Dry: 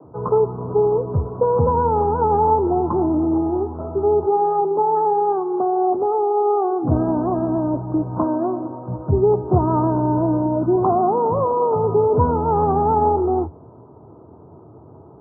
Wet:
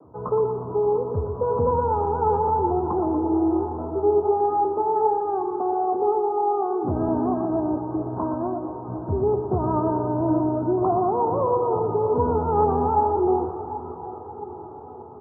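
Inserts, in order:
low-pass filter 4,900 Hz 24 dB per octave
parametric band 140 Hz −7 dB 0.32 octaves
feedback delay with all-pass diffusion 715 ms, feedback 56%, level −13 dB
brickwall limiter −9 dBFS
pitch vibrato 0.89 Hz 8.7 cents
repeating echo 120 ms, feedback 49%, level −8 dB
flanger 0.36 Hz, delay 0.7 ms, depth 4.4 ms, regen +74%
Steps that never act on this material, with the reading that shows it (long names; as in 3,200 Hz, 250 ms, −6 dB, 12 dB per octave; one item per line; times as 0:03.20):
low-pass filter 4,900 Hz: nothing at its input above 1,400 Hz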